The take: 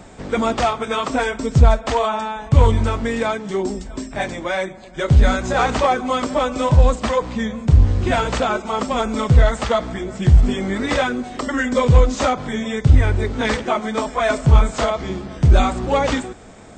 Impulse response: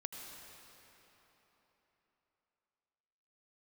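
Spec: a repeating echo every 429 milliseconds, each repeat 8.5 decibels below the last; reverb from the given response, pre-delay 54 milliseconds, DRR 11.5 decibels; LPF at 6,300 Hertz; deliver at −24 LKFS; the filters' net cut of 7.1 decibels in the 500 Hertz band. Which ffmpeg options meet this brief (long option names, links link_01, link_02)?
-filter_complex "[0:a]lowpass=6300,equalizer=frequency=500:width_type=o:gain=-9,aecho=1:1:429|858|1287|1716:0.376|0.143|0.0543|0.0206,asplit=2[link_01][link_02];[1:a]atrim=start_sample=2205,adelay=54[link_03];[link_02][link_03]afir=irnorm=-1:irlink=0,volume=-10dB[link_04];[link_01][link_04]amix=inputs=2:normalize=0,volume=-5dB"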